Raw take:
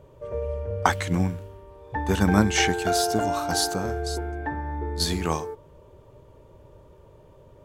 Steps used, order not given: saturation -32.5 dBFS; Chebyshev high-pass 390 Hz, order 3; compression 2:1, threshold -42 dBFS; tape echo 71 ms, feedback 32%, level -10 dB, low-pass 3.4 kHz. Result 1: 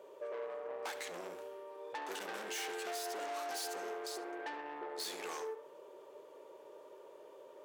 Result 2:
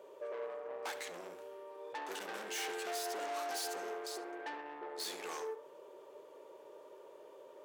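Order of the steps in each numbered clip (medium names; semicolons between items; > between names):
saturation > tape echo > Chebyshev high-pass > compression; saturation > compression > Chebyshev high-pass > tape echo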